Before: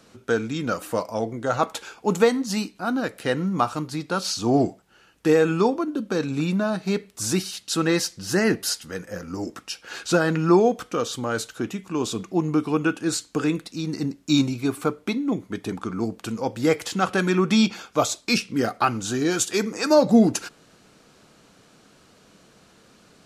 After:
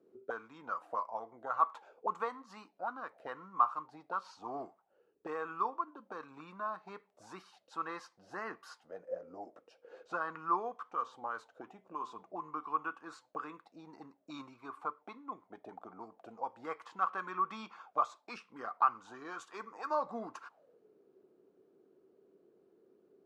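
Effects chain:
0:10.82–0:13.29: hum removal 127.3 Hz, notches 8
envelope filter 370–1,100 Hz, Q 8.3, up, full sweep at −22 dBFS
level +1 dB

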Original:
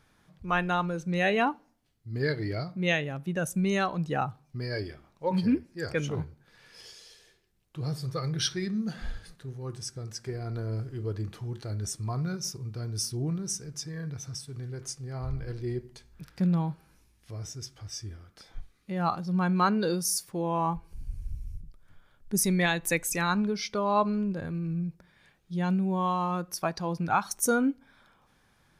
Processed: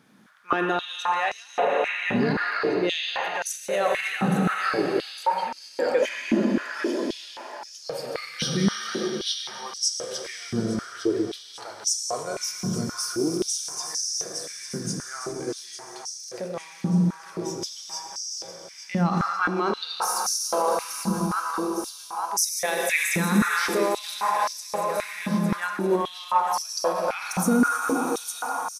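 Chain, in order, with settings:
repeating echo 856 ms, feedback 59%, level −11 dB
on a send at −1 dB: convolution reverb RT60 5.0 s, pre-delay 6 ms
0:06.02–0:07.81: on the sum: frequency shifter +96 Hz
in parallel at −4.5 dB: soft clipping −19.5 dBFS, distortion −16 dB
on the sum: brickwall limiter −18 dBFS, peak gain reduction 10 dB
high-pass on a step sequencer 3.8 Hz 210–5,600 Hz

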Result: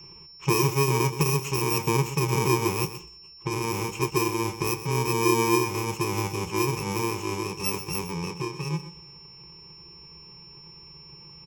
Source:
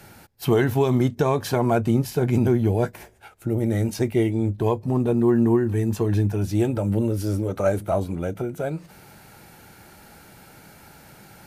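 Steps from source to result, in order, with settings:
samples in bit-reversed order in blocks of 64 samples
low-pass that shuts in the quiet parts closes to 2,500 Hz, open at −17.5 dBFS
steady tone 5,400 Hz −43 dBFS
EQ curve with evenly spaced ripples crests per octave 0.74, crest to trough 16 dB
single-tap delay 126 ms −12.5 dB
level −4.5 dB

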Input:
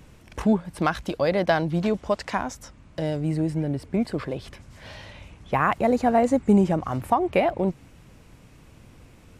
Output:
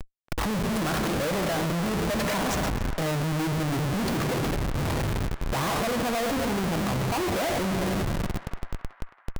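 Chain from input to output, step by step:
rectangular room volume 2,300 cubic metres, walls mixed, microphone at 0.66 metres
flanger 0.34 Hz, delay 4.1 ms, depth 7.1 ms, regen −80%
downward compressor, threshold −28 dBFS, peak gain reduction 9 dB
comparator with hysteresis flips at −44 dBFS
feedback echo with a band-pass in the loop 277 ms, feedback 67%, band-pass 1,400 Hz, level −11.5 dB
level +8 dB

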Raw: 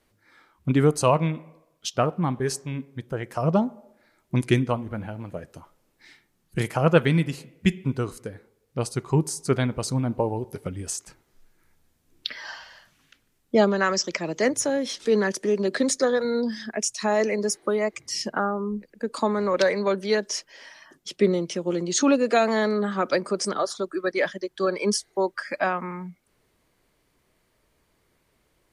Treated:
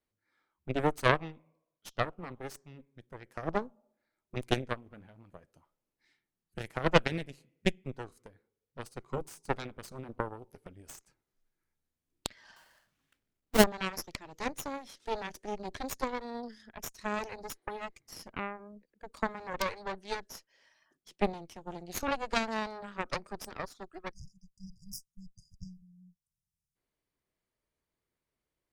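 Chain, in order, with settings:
0:12.56–0:13.64: each half-wave held at its own peak
harmonic generator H 2 −7 dB, 3 −9 dB, 5 −30 dB, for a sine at −4.5 dBFS
0:24.13–0:26.75: time-frequency box erased 210–4,800 Hz

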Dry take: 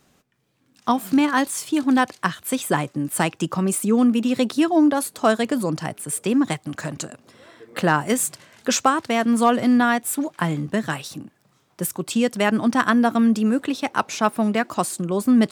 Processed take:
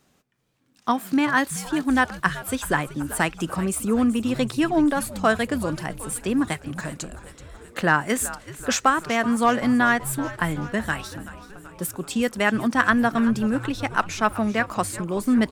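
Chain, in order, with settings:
dynamic equaliser 1,700 Hz, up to +7 dB, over −36 dBFS, Q 1.5
on a send: echo with shifted repeats 380 ms, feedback 64%, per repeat −110 Hz, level −15.5 dB
on the sum: level −3.5 dB

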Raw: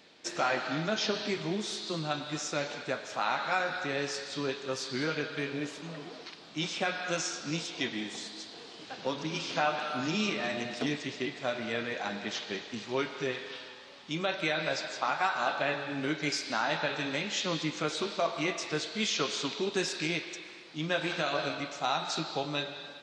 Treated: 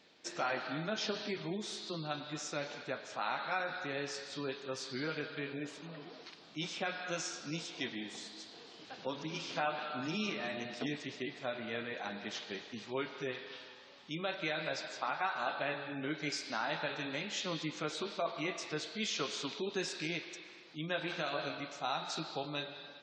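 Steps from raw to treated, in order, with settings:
gate on every frequency bin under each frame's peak −30 dB strong
level −6 dB

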